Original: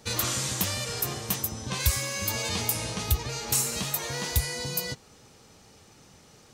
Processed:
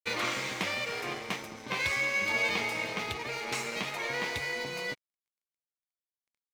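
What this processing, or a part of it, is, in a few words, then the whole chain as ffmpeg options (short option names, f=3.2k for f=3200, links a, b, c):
pocket radio on a weak battery: -af "highpass=270,lowpass=3.1k,aeval=exprs='sgn(val(0))*max(abs(val(0))-0.00398,0)':c=same,equalizer=f=2.2k:t=o:w=0.26:g=11,volume=2.5dB"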